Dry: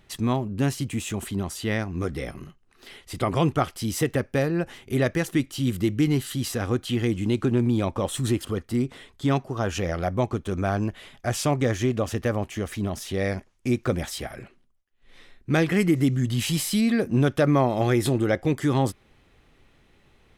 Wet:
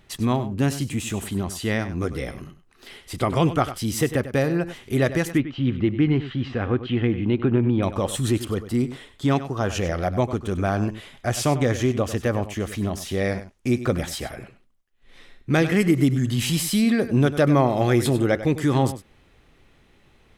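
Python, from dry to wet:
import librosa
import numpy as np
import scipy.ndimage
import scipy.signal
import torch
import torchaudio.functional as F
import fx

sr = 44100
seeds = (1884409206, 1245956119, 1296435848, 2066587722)

y = fx.lowpass(x, sr, hz=3000.0, slope=24, at=(5.31, 7.83))
y = y + 10.0 ** (-13.0 / 20.0) * np.pad(y, (int(98 * sr / 1000.0), 0))[:len(y)]
y = F.gain(torch.from_numpy(y), 2.0).numpy()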